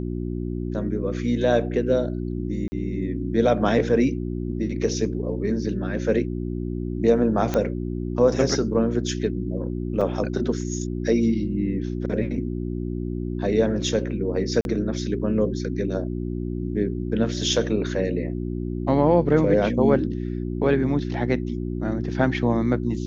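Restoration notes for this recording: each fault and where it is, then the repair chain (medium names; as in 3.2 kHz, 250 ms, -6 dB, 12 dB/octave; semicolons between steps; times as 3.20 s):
hum 60 Hz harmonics 6 -28 dBFS
2.68–2.72 s: dropout 40 ms
7.54 s: pop -11 dBFS
10.01–10.02 s: dropout 5.9 ms
14.61–14.65 s: dropout 41 ms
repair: de-click; de-hum 60 Hz, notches 6; interpolate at 2.68 s, 40 ms; interpolate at 10.01 s, 5.9 ms; interpolate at 14.61 s, 41 ms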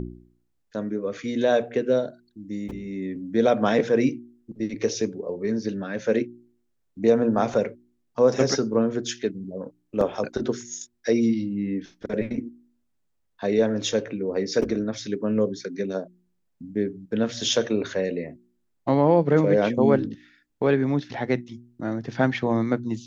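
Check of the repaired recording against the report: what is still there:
nothing left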